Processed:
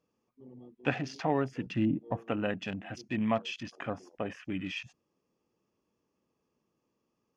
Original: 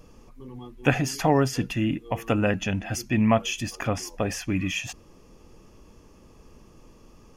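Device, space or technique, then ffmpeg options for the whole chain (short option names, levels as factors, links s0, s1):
over-cleaned archive recording: -filter_complex "[0:a]highpass=150,lowpass=6500,afwtdn=0.0126,asettb=1/sr,asplit=3[s0][s1][s2];[s0]atrim=end=1.664[s3];[s1]atrim=start=1.66:end=2.17,asetpts=PTS-STARTPTS,afade=t=in:d=0.004:c=qsin,afade=t=out:st=0.506:d=0.004:c=qsin,lowshelf=f=350:g=9.5[s4];[s2]atrim=start=2.166[s5];[s3][s4]acrossfade=d=0.004:c1=hsin:c2=qsin[s6];[s6][s5]acrossfade=d=0.004:c1=qsin:c2=hsin,volume=0.398"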